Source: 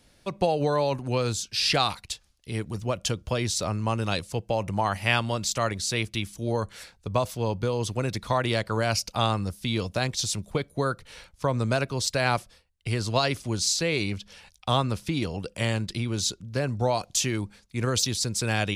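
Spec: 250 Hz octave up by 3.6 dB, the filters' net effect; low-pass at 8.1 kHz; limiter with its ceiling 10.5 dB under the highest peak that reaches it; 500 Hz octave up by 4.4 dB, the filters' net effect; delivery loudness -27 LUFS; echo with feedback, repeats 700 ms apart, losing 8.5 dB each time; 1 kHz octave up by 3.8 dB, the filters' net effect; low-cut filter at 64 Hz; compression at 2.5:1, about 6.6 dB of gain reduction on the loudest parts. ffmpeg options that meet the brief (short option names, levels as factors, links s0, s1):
-af "highpass=64,lowpass=8100,equalizer=f=250:t=o:g=3.5,equalizer=f=500:t=o:g=3.5,equalizer=f=1000:t=o:g=3.5,acompressor=threshold=0.0562:ratio=2.5,alimiter=limit=0.0944:level=0:latency=1,aecho=1:1:700|1400|2100|2800:0.376|0.143|0.0543|0.0206,volume=1.68"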